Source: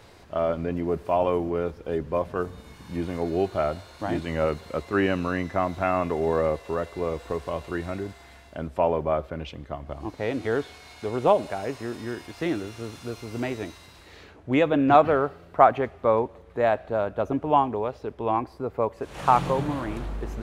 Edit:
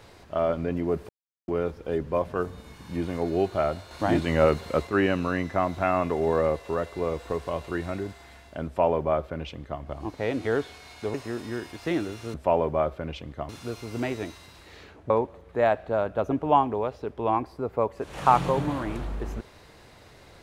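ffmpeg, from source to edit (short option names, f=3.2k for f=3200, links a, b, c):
-filter_complex "[0:a]asplit=9[a][b][c][d][e][f][g][h][i];[a]atrim=end=1.09,asetpts=PTS-STARTPTS,afade=t=out:st=1.086:d=0.004:c=hsin[j];[b]atrim=start=1.09:end=1.48,asetpts=PTS-STARTPTS,volume=0[k];[c]atrim=start=1.48:end=3.912,asetpts=PTS-STARTPTS,afade=t=in:d=0.004:c=hsin[l];[d]atrim=start=3.908:end=4.872,asetpts=PTS-STARTPTS,volume=4.5dB[m];[e]atrim=start=4.868:end=11.142[n];[f]atrim=start=11.688:end=12.892[o];[g]atrim=start=8.658:end=9.812[p];[h]atrim=start=12.888:end=14.502[q];[i]atrim=start=16.108[r];[j][k][l]concat=n=3:v=0:a=1[s];[s][m]acrossfade=d=0.004:c1=hsin:c2=hsin[t];[t][n]acrossfade=d=0.004:c1=hsin:c2=hsin[u];[u][o]acrossfade=d=0.004:c1=hsin:c2=hsin[v];[v][p]acrossfade=d=0.004:c1=hsin:c2=hsin[w];[w][q]acrossfade=d=0.004:c1=hsin:c2=hsin[x];[x][r]acrossfade=d=0.004:c1=hsin:c2=hsin"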